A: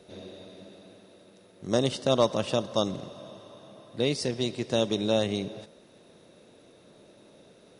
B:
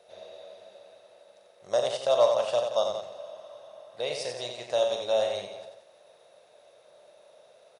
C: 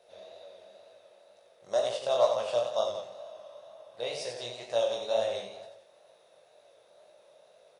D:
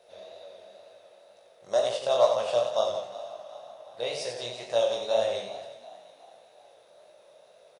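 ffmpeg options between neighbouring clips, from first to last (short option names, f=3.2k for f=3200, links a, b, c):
-af "lowshelf=f=410:t=q:w=3:g=-13.5,aecho=1:1:40.82|90.38|174.9:0.398|0.501|0.316,volume=-4.5dB"
-af "flanger=delay=17.5:depth=7.9:speed=2.1"
-filter_complex "[0:a]asplit=5[a][b][c][d][e];[b]adelay=364,afreqshift=41,volume=-17.5dB[f];[c]adelay=728,afreqshift=82,volume=-23.7dB[g];[d]adelay=1092,afreqshift=123,volume=-29.9dB[h];[e]adelay=1456,afreqshift=164,volume=-36.1dB[i];[a][f][g][h][i]amix=inputs=5:normalize=0,volume=3dB"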